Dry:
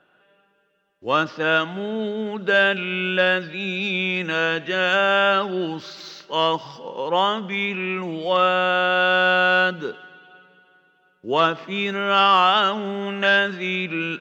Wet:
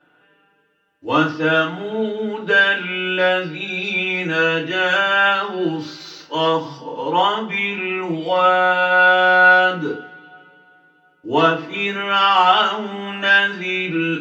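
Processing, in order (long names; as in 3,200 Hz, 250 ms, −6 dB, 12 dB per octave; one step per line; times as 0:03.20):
feedback delay network reverb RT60 0.34 s, low-frequency decay 1.55×, high-frequency decay 0.8×, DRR −8 dB
level −6 dB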